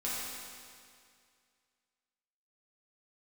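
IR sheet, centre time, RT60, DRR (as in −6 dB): 142 ms, 2.2 s, −8.5 dB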